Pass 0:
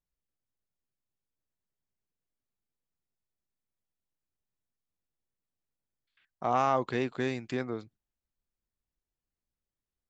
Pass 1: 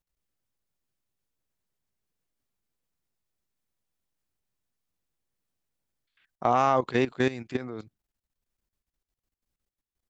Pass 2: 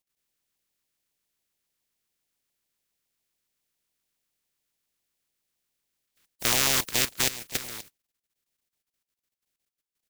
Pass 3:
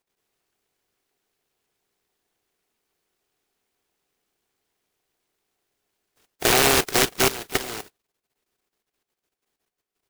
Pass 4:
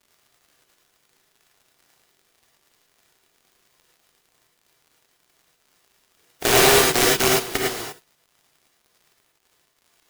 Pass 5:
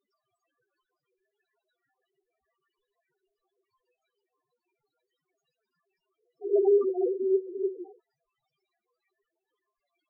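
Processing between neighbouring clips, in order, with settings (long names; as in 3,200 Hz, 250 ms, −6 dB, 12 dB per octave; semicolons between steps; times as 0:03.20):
output level in coarse steps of 15 dB; level +8 dB
compressing power law on the bin magnitudes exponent 0.13; auto-filter notch saw down 7.2 Hz 540–1,600 Hz
hollow resonant body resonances 410/730/1,500 Hz, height 14 dB, ringing for 25 ms; short delay modulated by noise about 1,500 Hz, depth 0.18 ms; level +3 dB
surface crackle 99 per second −44 dBFS; reverb whose tail is shaped and stops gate 130 ms rising, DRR −2.5 dB; level −1.5 dB
amplitude tremolo 6.4 Hz, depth 47%; spectral peaks only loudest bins 2; level +2.5 dB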